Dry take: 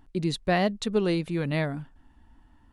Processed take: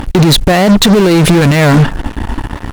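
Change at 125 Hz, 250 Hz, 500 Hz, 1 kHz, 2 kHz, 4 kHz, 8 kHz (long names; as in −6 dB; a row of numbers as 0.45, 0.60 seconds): +21.5, +20.0, +16.5, +17.5, +18.0, +23.0, +26.0 decibels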